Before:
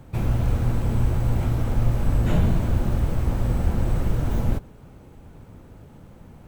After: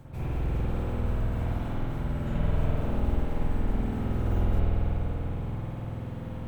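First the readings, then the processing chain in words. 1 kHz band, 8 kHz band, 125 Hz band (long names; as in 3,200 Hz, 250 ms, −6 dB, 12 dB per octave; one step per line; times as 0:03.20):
−3.5 dB, below −10 dB, −6.0 dB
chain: reversed playback
downward compressor 10 to 1, threshold −31 dBFS, peak gain reduction 17.5 dB
reversed playback
spring reverb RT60 3.6 s, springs 48 ms, chirp 55 ms, DRR −10 dB
level −1 dB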